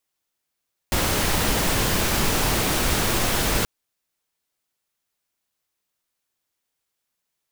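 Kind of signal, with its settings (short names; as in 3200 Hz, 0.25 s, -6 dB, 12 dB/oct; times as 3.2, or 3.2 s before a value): noise pink, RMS -21.5 dBFS 2.73 s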